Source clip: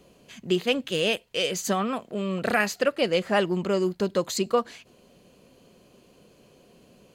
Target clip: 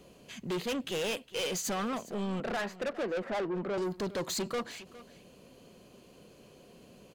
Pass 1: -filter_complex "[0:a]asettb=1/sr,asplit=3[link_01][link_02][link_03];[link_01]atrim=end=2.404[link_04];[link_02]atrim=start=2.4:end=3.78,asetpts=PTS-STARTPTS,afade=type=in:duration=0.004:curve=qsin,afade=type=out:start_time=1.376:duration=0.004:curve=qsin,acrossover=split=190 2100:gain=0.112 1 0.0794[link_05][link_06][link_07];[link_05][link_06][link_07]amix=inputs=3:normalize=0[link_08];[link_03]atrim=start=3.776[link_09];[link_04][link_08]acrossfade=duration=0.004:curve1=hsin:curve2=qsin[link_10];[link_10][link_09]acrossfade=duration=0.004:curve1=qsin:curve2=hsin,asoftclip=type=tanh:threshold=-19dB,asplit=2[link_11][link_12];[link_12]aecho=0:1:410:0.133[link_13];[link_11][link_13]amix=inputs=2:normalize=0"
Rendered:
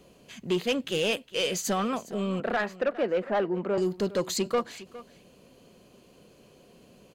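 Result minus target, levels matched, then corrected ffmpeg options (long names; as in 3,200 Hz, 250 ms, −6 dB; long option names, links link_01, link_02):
soft clipping: distortion −9 dB
-filter_complex "[0:a]asettb=1/sr,asplit=3[link_01][link_02][link_03];[link_01]atrim=end=2.404[link_04];[link_02]atrim=start=2.4:end=3.78,asetpts=PTS-STARTPTS,afade=type=in:duration=0.004:curve=qsin,afade=type=out:start_time=1.376:duration=0.004:curve=qsin,acrossover=split=190 2100:gain=0.112 1 0.0794[link_05][link_06][link_07];[link_05][link_06][link_07]amix=inputs=3:normalize=0[link_08];[link_03]atrim=start=3.776[link_09];[link_04][link_08]acrossfade=duration=0.004:curve1=hsin:curve2=qsin[link_10];[link_10][link_09]acrossfade=duration=0.004:curve1=qsin:curve2=hsin,asoftclip=type=tanh:threshold=-30dB,asplit=2[link_11][link_12];[link_12]aecho=0:1:410:0.133[link_13];[link_11][link_13]amix=inputs=2:normalize=0"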